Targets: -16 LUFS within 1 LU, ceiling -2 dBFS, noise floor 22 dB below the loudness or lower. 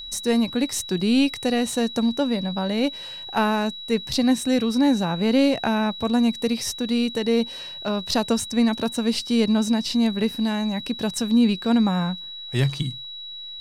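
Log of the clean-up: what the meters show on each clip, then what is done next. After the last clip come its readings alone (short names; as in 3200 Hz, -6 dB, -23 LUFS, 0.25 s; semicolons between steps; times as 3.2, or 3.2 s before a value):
steady tone 3900 Hz; tone level -34 dBFS; loudness -22.5 LUFS; peak -9.0 dBFS; loudness target -16.0 LUFS
-> notch 3900 Hz, Q 30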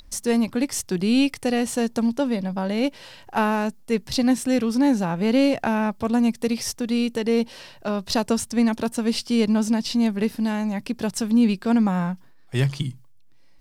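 steady tone none; loudness -23.0 LUFS; peak -9.5 dBFS; loudness target -16.0 LUFS
-> gain +7 dB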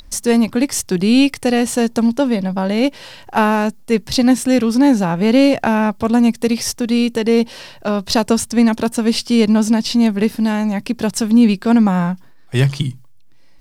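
loudness -16.0 LUFS; peak -2.5 dBFS; noise floor -41 dBFS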